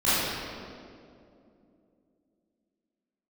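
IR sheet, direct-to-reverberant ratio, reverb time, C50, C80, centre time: -15.5 dB, 2.6 s, -5.0 dB, -2.0 dB, 0.162 s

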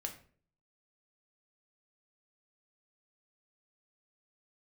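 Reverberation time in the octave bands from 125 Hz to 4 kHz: 0.70, 0.60, 0.55, 0.40, 0.40, 0.30 s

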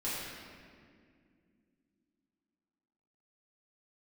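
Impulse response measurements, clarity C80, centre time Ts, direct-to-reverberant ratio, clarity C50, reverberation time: 0.0 dB, 0.128 s, -10.5 dB, -2.0 dB, 2.2 s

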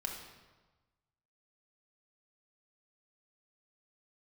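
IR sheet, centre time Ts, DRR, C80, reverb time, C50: 44 ms, 0.5 dB, 6.0 dB, 1.2 s, 4.0 dB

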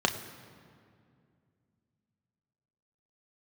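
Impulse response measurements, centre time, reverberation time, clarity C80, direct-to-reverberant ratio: 21 ms, 2.3 s, 11.5 dB, 4.0 dB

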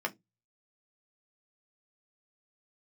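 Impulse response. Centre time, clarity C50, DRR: 5 ms, 25.0 dB, 2.5 dB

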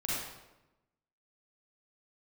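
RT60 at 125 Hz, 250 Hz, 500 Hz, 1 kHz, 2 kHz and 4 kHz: 1.2, 1.2, 1.0, 0.95, 0.80, 0.70 s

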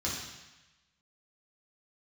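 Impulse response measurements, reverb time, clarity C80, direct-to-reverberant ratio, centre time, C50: 1.0 s, 4.5 dB, -6.5 dB, 61 ms, 1.5 dB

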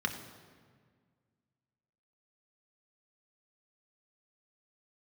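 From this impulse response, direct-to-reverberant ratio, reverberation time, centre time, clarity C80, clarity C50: 3.5 dB, 1.7 s, 22 ms, 10.0 dB, 9.0 dB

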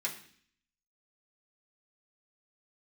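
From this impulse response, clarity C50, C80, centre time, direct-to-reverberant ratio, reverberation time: 10.5 dB, 13.5 dB, 17 ms, -4.5 dB, 0.55 s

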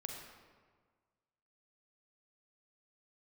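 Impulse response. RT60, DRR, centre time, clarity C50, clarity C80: 1.6 s, 1.0 dB, 60 ms, 2.5 dB, 4.0 dB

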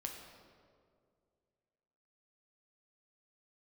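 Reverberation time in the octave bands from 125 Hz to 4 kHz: 2.5, 2.4, 2.5, 1.9, 1.4, 1.2 s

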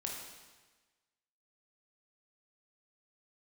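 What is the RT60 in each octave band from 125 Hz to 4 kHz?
1.3, 1.3, 1.3, 1.3, 1.3, 1.3 s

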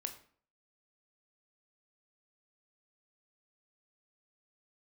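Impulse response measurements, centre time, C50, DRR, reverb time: 11 ms, 11.5 dB, 6.0 dB, 0.50 s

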